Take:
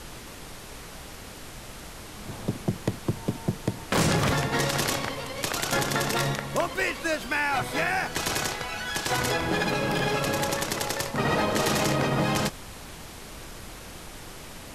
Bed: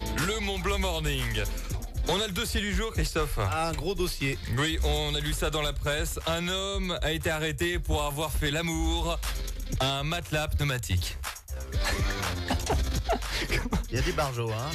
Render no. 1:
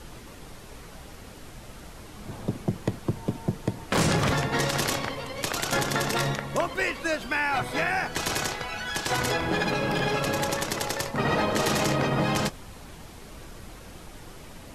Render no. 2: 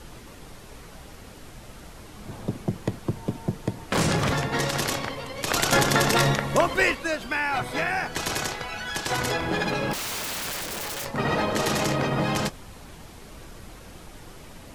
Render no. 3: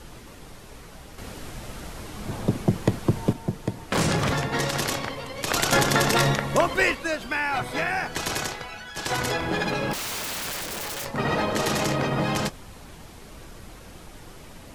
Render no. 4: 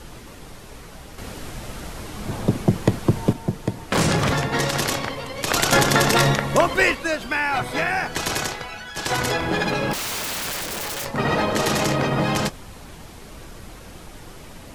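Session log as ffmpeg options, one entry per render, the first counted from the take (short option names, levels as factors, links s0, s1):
-af "afftdn=nr=6:nf=-42"
-filter_complex "[0:a]asettb=1/sr,asplit=3[s0][s1][s2];[s0]atrim=end=5.484[s3];[s1]atrim=start=5.48:end=6.95,asetpts=PTS-STARTPTS,afade=t=in:d=0.004:c=qsin,afade=t=out:st=1.466:d=0.004:c=qsin,acontrast=46[s4];[s2]atrim=start=6.946[s5];[s3][s4]acrossfade=d=0.004:c1=hsin:c2=qsin[s6];[s6][s5]acrossfade=d=0.004:c1=qsin:c2=hsin,asettb=1/sr,asplit=3[s7][s8][s9];[s7]atrim=end=9.934[s10];[s8]atrim=start=9.93:end=11.05,asetpts=PTS-STARTPTS,afade=t=in:d=0.004:c=qsin,afade=t=out:st=1.116:d=0.004:c=qsin,aeval=exprs='(mod(21.1*val(0)+1,2)-1)/21.1':c=same[s11];[s9]atrim=start=11.046[s12];[s10][s11]acrossfade=d=0.004:c1=hsin:c2=qsin[s13];[s13][s12]acrossfade=d=0.004:c1=qsin:c2=hsin"
-filter_complex "[0:a]asettb=1/sr,asplit=3[s0][s1][s2];[s0]atrim=end=1.184[s3];[s1]atrim=start=1.18:end=3.33,asetpts=PTS-STARTPTS,afade=t=in:d=0.004:c=qsin,afade=t=out:st=2.146:d=0.004:c=qsin,acontrast=56[s4];[s2]atrim=start=3.326[s5];[s3][s4]acrossfade=d=0.004:c1=hsin:c2=qsin[s6];[s6][s5]acrossfade=d=0.004:c1=qsin:c2=hsin,asplit=2[s7][s8];[s7]atrim=end=8.97,asetpts=PTS-STARTPTS,afade=t=out:st=8.39:d=0.58:silence=0.334965[s9];[s8]atrim=start=8.97,asetpts=PTS-STARTPTS,afade=t=in:d=0.004:c=hsin:silence=0.334965[s10];[s9][s10]concat=n=2:v=0:a=1"
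-af "volume=1.5"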